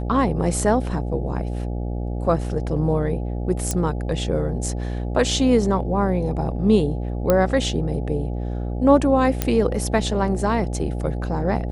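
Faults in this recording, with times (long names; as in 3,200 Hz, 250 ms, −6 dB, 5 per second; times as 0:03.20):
mains buzz 60 Hz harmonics 14 −26 dBFS
0:03.71: click −9 dBFS
0:07.30: click −5 dBFS
0:09.42: click −5 dBFS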